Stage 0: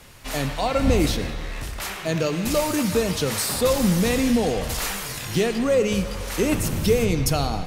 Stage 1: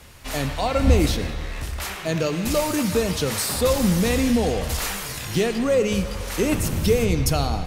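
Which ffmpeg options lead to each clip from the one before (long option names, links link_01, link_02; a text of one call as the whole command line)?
ffmpeg -i in.wav -af "equalizer=frequency=72:width=6.2:gain=11" out.wav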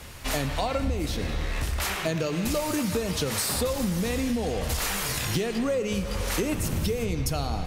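ffmpeg -i in.wav -af "acompressor=threshold=-27dB:ratio=12,volume=3.5dB" out.wav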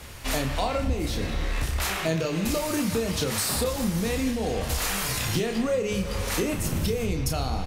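ffmpeg -i in.wav -filter_complex "[0:a]asplit=2[link_01][link_02];[link_02]adelay=31,volume=-6.5dB[link_03];[link_01][link_03]amix=inputs=2:normalize=0" out.wav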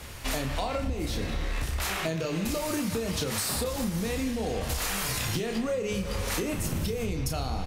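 ffmpeg -i in.wav -af "acompressor=threshold=-26dB:ratio=6" out.wav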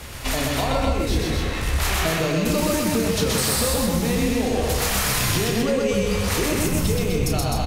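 ffmpeg -i in.wav -af "aecho=1:1:125.4|256.6:0.794|0.631,volume=5.5dB" out.wav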